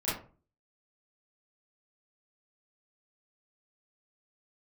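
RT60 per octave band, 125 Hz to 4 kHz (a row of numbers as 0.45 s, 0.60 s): 0.55 s, 0.50 s, 0.40 s, 0.35 s, 0.30 s, 0.20 s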